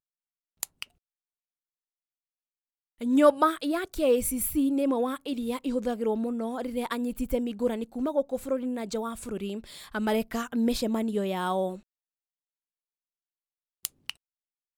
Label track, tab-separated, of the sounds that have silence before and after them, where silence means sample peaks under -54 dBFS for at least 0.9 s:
2.990000	11.810000	sound